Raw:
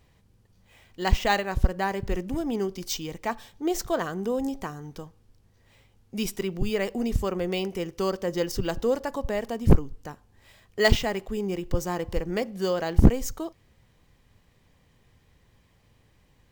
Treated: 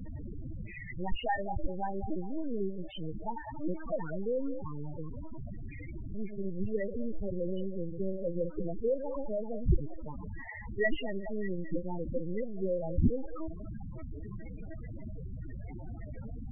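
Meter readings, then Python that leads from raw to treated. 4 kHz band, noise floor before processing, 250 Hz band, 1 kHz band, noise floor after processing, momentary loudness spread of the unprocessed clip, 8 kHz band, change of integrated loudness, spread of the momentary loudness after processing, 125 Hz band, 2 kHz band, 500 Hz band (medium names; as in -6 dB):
-16.0 dB, -63 dBFS, -7.0 dB, -8.5 dB, -43 dBFS, 13 LU, under -40 dB, -9.5 dB, 12 LU, -8.0 dB, -9.0 dB, -6.5 dB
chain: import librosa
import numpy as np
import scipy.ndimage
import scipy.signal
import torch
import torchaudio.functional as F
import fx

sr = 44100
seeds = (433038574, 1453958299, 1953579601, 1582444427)

y = x + 0.5 * 10.0 ** (-23.0 / 20.0) * np.sign(x)
y = fx.lpc_vocoder(y, sr, seeds[0], excitation='pitch_kept', order=8)
y = fx.echo_stepped(y, sr, ms=200, hz=720.0, octaves=0.7, feedback_pct=70, wet_db=-8.0)
y = fx.dynamic_eq(y, sr, hz=690.0, q=1.9, threshold_db=-34.0, ratio=4.0, max_db=-3)
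y = scipy.signal.sosfilt(scipy.signal.butter(4, 2900.0, 'lowpass', fs=sr, output='sos'), y)
y = fx.low_shelf(y, sr, hz=260.0, db=-3.0)
y = 10.0 ** (-6.5 / 20.0) * np.tanh(y / 10.0 ** (-6.5 / 20.0))
y = fx.spec_topn(y, sr, count=8)
y = y * 10.0 ** (-6.0 / 20.0)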